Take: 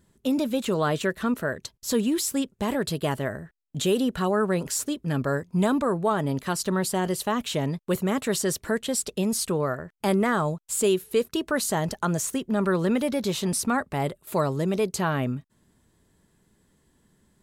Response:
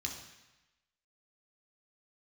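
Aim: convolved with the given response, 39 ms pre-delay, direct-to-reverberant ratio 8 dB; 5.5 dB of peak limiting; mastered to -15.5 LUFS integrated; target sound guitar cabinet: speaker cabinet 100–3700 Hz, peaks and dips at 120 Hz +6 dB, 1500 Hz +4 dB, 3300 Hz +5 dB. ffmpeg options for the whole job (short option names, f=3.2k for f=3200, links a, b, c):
-filter_complex "[0:a]alimiter=limit=-18dB:level=0:latency=1,asplit=2[a][b];[1:a]atrim=start_sample=2205,adelay=39[c];[b][c]afir=irnorm=-1:irlink=0,volume=-8.5dB[d];[a][d]amix=inputs=2:normalize=0,highpass=100,equalizer=f=120:t=q:w=4:g=6,equalizer=f=1.5k:t=q:w=4:g=4,equalizer=f=3.3k:t=q:w=4:g=5,lowpass=f=3.7k:w=0.5412,lowpass=f=3.7k:w=1.3066,volume=12dB"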